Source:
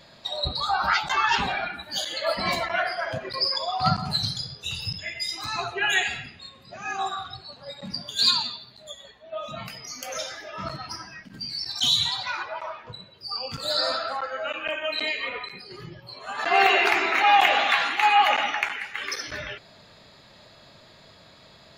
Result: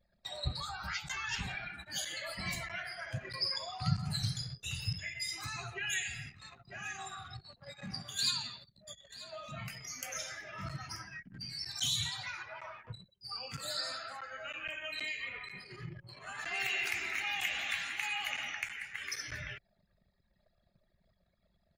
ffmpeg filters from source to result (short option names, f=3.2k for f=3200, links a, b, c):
-filter_complex "[0:a]asettb=1/sr,asplit=3[a][b][c];[a]atrim=end=4.934[d];[b]atrim=start=4.93:end=11.02,asetpts=PTS-STARTPTS,afade=t=in:d=0.004:c=qsin,afade=t=out:st=6.086:d=0.004:c=qsin,aecho=1:1:934:0.126,atrim=end_sample=268569[e];[c]atrim=start=11.016[f];[d][e]acrossfade=d=0.004:c1=hsin:c2=qsin[g];[g][f]acrossfade=d=0.004:c1=qsin:c2=hsin,asettb=1/sr,asplit=3[h][i][j];[h]atrim=end=13.434[k];[i]atrim=start=13.43:end=14.28,asetpts=PTS-STARTPTS,afade=t=in:d=0.004:c=qsin,afade=t=out:st=0.846:d=0.004:c=qsin,highpass=f=180:p=1[l];[j]atrim=start=14.276[m];[k][l]acrossfade=d=0.004:c1=hsin:c2=qsin[n];[n][m]acrossfade=d=0.004:c1=qsin:c2=hsin,asplit=3[o][p][q];[o]afade=t=out:st=15.54:d=0.02[r];[p]aecho=1:1:178|356|534|712:0.168|0.0688|0.0282|0.0116,afade=t=in:st=15.54:d=0.02,afade=t=out:st=18.52:d=0.02[s];[q]afade=t=in:st=18.52:d=0.02[t];[r][s][t]amix=inputs=3:normalize=0,anlmdn=0.0631,equalizer=f=125:t=o:w=1:g=5,equalizer=f=250:t=o:w=1:g=-5,equalizer=f=500:t=o:w=1:g=-6,equalizer=f=1k:t=o:w=1:g=-6,equalizer=f=2k:t=o:w=1:g=6,equalizer=f=4k:t=o:w=1:g=-10,equalizer=f=8k:t=o:w=1:g=5,acrossover=split=190|3000[u][v][w];[v]acompressor=threshold=-38dB:ratio=6[x];[u][x][w]amix=inputs=3:normalize=0,volume=-4.5dB"